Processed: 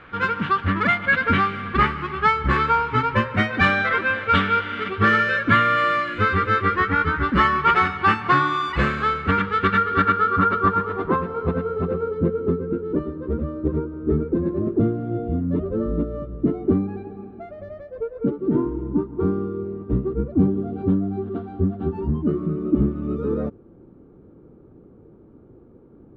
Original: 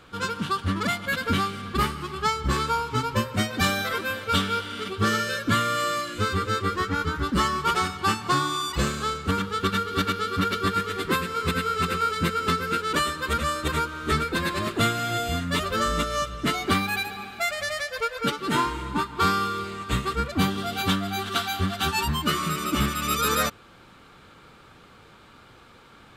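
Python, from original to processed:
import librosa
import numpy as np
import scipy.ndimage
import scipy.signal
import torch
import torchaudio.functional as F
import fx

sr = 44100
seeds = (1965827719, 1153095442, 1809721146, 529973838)

y = fx.filter_sweep_lowpass(x, sr, from_hz=2000.0, to_hz=360.0, start_s=9.62, end_s=12.72, q=2.1)
y = y * 10.0 ** (3.5 / 20.0)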